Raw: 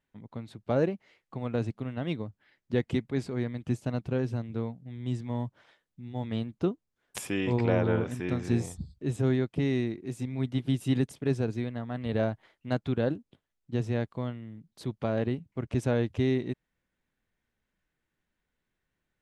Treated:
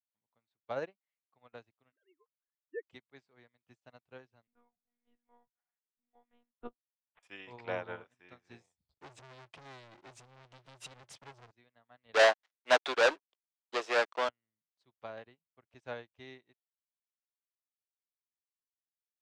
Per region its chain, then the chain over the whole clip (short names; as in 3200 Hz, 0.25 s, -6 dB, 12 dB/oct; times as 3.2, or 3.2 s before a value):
1.92–2.86 sine-wave speech + fixed phaser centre 660 Hz, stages 6
4.47–7.23 LPF 1700 Hz + comb 5.6 ms, depth 70% + monotone LPC vocoder at 8 kHz 240 Hz
8.89–11.51 bell 120 Hz +9.5 dB 0.55 oct + compressor, threshold -31 dBFS + sample leveller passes 5
12.14–14.29 HPF 350 Hz 24 dB/oct + sample leveller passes 5
whole clip: three-band isolator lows -18 dB, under 600 Hz, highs -23 dB, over 7500 Hz; upward expander 2.5:1, over -52 dBFS; gain +6 dB